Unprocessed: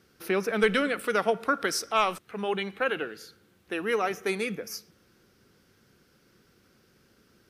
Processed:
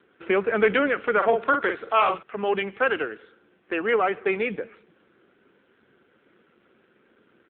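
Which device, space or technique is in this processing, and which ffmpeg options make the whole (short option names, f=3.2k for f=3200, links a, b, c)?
telephone: -filter_complex "[0:a]asplit=3[a][b][c];[a]afade=t=out:st=1.21:d=0.02[d];[b]asplit=2[e][f];[f]adelay=45,volume=-6dB[g];[e][g]amix=inputs=2:normalize=0,afade=t=in:st=1.21:d=0.02,afade=t=out:st=2.24:d=0.02[h];[c]afade=t=in:st=2.24:d=0.02[i];[d][h][i]amix=inputs=3:normalize=0,highpass=270,lowpass=3.2k,asoftclip=type=tanh:threshold=-17dB,volume=7dB" -ar 8000 -c:a libopencore_amrnb -b:a 7400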